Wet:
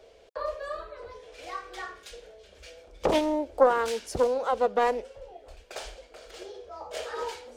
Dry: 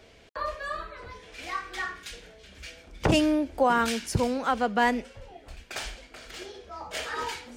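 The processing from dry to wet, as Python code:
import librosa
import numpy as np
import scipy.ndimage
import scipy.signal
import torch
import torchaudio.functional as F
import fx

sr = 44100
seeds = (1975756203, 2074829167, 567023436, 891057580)

y = fx.graphic_eq(x, sr, hz=(125, 250, 500, 2000), db=(-10, -8, 12, -5))
y = fx.doppler_dist(y, sr, depth_ms=0.53)
y = y * librosa.db_to_amplitude(-4.0)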